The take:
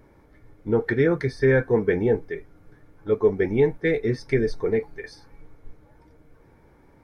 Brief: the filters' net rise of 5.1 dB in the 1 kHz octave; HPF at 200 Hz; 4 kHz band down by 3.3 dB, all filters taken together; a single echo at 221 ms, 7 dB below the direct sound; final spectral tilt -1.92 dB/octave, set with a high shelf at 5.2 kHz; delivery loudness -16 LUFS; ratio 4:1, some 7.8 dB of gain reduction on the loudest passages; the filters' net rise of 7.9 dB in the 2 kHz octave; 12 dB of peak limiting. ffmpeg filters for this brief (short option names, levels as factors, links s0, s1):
-af "highpass=200,equalizer=f=1000:t=o:g=4.5,equalizer=f=2000:t=o:g=9,equalizer=f=4000:t=o:g=-8,highshelf=f=5200:g=3,acompressor=threshold=0.0708:ratio=4,alimiter=limit=0.0841:level=0:latency=1,aecho=1:1:221:0.447,volume=5.96"